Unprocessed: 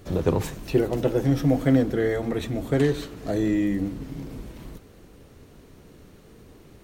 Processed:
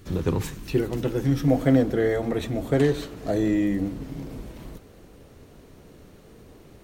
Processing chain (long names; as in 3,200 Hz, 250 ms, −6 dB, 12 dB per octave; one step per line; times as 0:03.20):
parametric band 630 Hz −9.5 dB 0.88 octaves, from 0:01.48 +3 dB